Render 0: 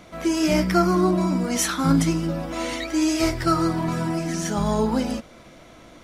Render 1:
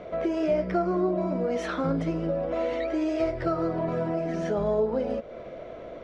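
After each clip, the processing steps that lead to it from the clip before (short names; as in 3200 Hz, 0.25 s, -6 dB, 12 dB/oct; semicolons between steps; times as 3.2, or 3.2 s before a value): LPF 2500 Hz 12 dB/oct; band shelf 510 Hz +12.5 dB 1 oct; compressor 2.5:1, threshold -28 dBFS, peak gain reduction 13 dB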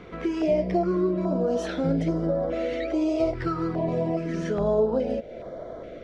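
reverse echo 0.114 s -23 dB; stepped notch 2.4 Hz 620–2600 Hz; gain +3 dB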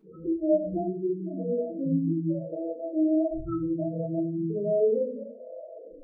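rotary speaker horn 7 Hz, later 0.7 Hz, at 2.68; loudest bins only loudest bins 4; shoebox room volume 120 m³, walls furnished, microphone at 3.5 m; gain -8.5 dB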